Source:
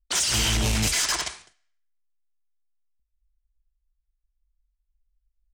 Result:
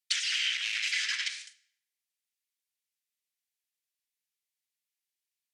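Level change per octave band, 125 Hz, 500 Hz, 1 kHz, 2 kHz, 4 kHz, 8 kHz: under -40 dB, under -40 dB, -19.0 dB, -1.0 dB, -4.0 dB, -13.0 dB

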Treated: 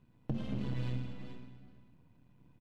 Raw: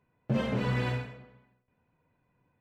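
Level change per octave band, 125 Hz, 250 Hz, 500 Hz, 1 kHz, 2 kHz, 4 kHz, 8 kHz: -6.0 dB, -6.5 dB, -14.0 dB, -15.0 dB, -16.5 dB, -10.5 dB, n/a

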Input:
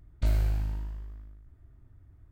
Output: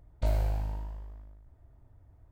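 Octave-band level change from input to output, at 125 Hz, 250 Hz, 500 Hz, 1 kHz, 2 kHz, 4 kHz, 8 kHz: -2.5 dB, -2.5 dB, +6.0 dB, +6.0 dB, -2.5 dB, -2.5 dB, n/a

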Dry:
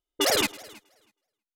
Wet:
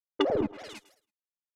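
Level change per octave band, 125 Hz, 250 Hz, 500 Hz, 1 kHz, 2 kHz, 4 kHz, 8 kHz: +2.5, +2.5, 0.0, -4.0, -12.0, -13.0, -25.5 dB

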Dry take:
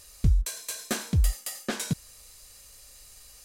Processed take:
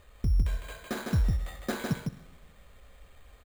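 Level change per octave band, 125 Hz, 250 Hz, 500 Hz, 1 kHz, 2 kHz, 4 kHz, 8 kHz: -2.0, -0.5, +1.0, +0.5, -1.5, -7.5, -14.5 dB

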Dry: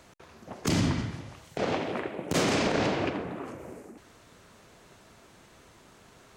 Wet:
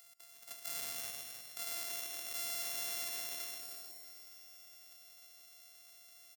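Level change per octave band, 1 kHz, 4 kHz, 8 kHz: -19.0, -6.5, -1.0 dB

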